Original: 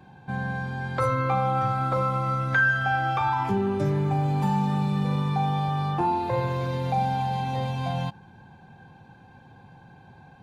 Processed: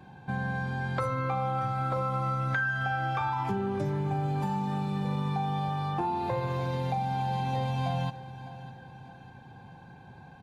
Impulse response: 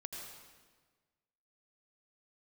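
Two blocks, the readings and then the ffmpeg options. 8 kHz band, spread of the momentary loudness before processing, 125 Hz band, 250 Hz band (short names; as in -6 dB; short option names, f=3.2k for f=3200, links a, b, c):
n/a, 6 LU, -4.5 dB, -5.0 dB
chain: -filter_complex "[0:a]acompressor=threshold=-27dB:ratio=6,asplit=2[a][b];[b]aecho=0:1:604|1208|1812|2416:0.158|0.0697|0.0307|0.0135[c];[a][c]amix=inputs=2:normalize=0,aresample=32000,aresample=44100"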